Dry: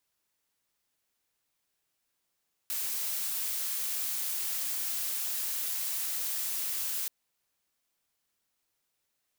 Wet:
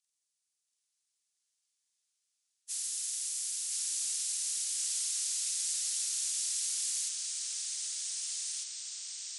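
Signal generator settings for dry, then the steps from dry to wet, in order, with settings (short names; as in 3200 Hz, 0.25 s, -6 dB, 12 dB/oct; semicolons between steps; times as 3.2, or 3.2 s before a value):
noise blue, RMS -33 dBFS 4.38 s
inharmonic rescaling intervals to 85%; band-pass 7300 Hz, Q 1.2; echoes that change speed 0.683 s, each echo -2 st, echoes 2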